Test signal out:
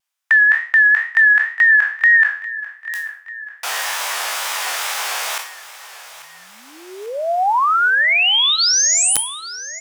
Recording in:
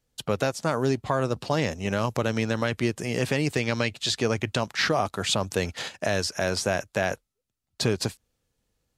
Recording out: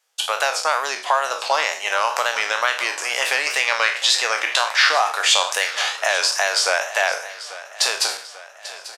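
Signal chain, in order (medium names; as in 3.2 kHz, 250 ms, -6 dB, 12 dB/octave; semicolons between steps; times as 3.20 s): spectral sustain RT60 0.42 s; high-pass 740 Hz 24 dB/octave; treble shelf 11 kHz -5.5 dB; band-stop 4.2 kHz, Q 17; in parallel at -2.5 dB: compression 16:1, threshold -29 dBFS; on the sum: integer overflow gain 9 dB; wow and flutter 95 cents; on a send: feedback delay 841 ms, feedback 55%, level -16 dB; on the sum: two-slope reverb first 0.36 s, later 1.7 s, from -27 dB, DRR 16.5 dB; trim +6.5 dB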